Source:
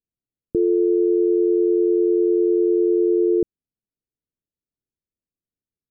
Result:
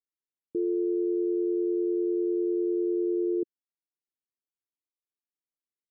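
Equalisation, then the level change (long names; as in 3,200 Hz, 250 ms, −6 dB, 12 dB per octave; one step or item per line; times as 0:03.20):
resonant band-pass 350 Hz, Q 2.3
−8.5 dB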